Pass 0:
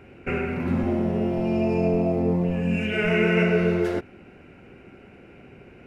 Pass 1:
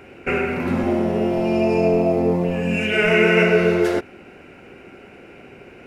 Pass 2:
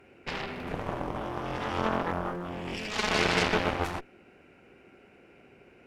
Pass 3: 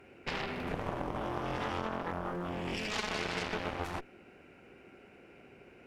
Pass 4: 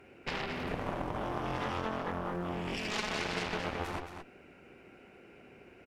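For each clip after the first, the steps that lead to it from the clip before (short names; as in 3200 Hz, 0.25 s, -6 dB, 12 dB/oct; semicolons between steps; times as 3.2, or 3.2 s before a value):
tone controls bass -8 dB, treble +4 dB; gain +7 dB
added harmonics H 3 -18 dB, 6 -15 dB, 7 -15 dB, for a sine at -3 dBFS; gain -9 dB
compressor 6:1, threshold -31 dBFS, peak gain reduction 11 dB
echo 0.221 s -8 dB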